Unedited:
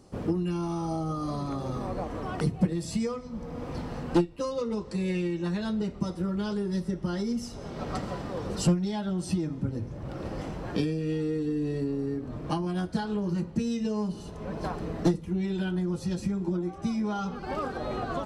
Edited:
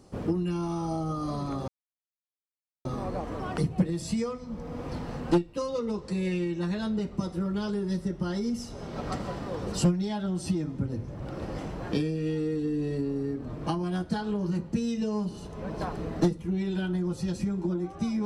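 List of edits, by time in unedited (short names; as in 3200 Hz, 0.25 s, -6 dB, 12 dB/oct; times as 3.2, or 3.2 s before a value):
1.68 insert silence 1.17 s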